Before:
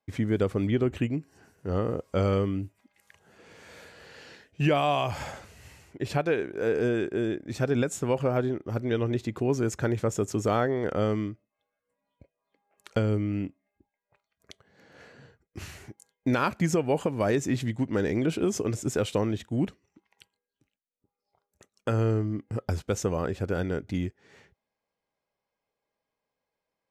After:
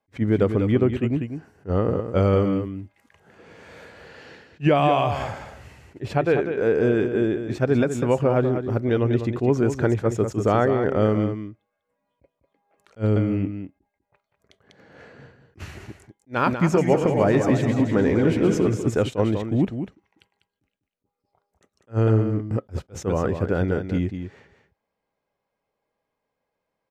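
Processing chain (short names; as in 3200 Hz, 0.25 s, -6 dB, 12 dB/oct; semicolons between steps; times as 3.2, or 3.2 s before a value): 16.46–18.7 regenerating reverse delay 0.149 s, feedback 64%, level -6.5 dB; high shelf 3600 Hz -12 dB; echo 0.197 s -8.5 dB; attack slew limiter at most 400 dB/s; gain +6 dB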